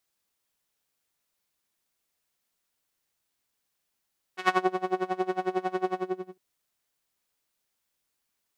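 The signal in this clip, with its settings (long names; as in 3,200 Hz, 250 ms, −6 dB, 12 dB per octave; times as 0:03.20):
subtractive patch with tremolo F#4, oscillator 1 saw, oscillator 2 saw, sub −12 dB, filter bandpass, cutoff 270 Hz, Q 1.1, filter envelope 3 octaves, filter decay 0.29 s, filter sustain 40%, attack 111 ms, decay 0.22 s, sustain −9 dB, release 0.47 s, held 1.54 s, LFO 11 Hz, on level 23 dB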